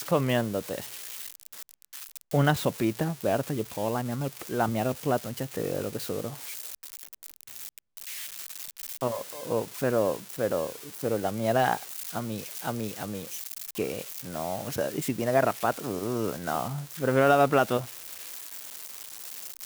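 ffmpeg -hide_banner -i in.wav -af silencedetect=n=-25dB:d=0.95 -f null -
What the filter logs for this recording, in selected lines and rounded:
silence_start: 0.78
silence_end: 2.34 | silence_duration: 1.55
silence_start: 6.28
silence_end: 9.02 | silence_duration: 2.74
silence_start: 17.79
silence_end: 19.65 | silence_duration: 1.86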